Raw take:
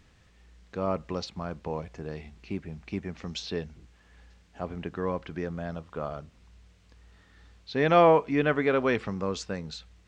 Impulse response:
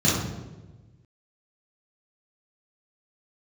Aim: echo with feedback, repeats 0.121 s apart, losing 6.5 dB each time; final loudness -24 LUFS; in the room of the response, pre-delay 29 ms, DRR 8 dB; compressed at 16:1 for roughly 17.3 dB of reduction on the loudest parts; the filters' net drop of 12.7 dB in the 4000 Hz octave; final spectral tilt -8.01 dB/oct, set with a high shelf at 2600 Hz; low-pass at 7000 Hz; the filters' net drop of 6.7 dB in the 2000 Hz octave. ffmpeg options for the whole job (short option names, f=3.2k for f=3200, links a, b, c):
-filter_complex "[0:a]lowpass=7k,equalizer=f=2k:t=o:g=-4,highshelf=f=2.6k:g=-7.5,equalizer=f=4k:t=o:g=-8,acompressor=threshold=-32dB:ratio=16,aecho=1:1:121|242|363|484|605|726:0.473|0.222|0.105|0.0491|0.0231|0.0109,asplit=2[a][b];[1:a]atrim=start_sample=2205,adelay=29[c];[b][c]afir=irnorm=-1:irlink=0,volume=-24dB[d];[a][d]amix=inputs=2:normalize=0,volume=10.5dB"